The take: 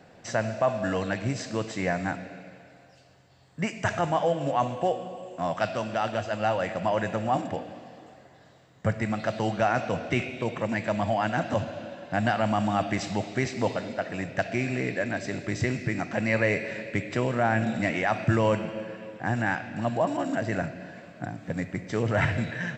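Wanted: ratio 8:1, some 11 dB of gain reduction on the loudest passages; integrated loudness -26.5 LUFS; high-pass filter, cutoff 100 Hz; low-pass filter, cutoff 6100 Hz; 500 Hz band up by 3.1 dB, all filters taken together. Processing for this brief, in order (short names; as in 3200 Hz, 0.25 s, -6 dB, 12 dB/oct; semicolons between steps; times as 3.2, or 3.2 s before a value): HPF 100 Hz; LPF 6100 Hz; bell 500 Hz +4 dB; compressor 8:1, threshold -29 dBFS; gain +8 dB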